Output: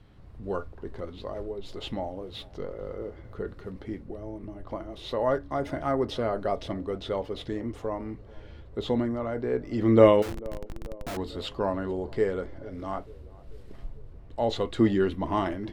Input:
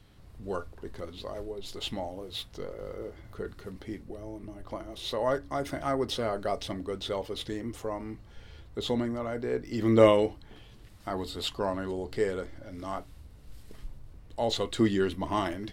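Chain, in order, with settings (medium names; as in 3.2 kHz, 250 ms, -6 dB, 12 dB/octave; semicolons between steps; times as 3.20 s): low-pass 1.7 kHz 6 dB/octave; 10.22–11.17 s: Schmitt trigger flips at -45 dBFS; band-passed feedback delay 442 ms, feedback 64%, band-pass 430 Hz, level -21.5 dB; trim +3 dB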